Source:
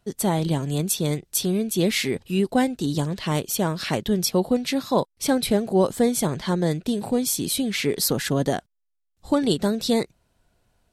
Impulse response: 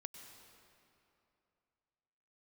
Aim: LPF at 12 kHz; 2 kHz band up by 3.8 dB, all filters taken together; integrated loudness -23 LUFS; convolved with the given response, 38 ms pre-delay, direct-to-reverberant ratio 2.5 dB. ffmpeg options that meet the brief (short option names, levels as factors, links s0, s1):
-filter_complex "[0:a]lowpass=12000,equalizer=f=2000:t=o:g=4.5,asplit=2[s0][s1];[1:a]atrim=start_sample=2205,adelay=38[s2];[s1][s2]afir=irnorm=-1:irlink=0,volume=1.26[s3];[s0][s3]amix=inputs=2:normalize=0,volume=0.841"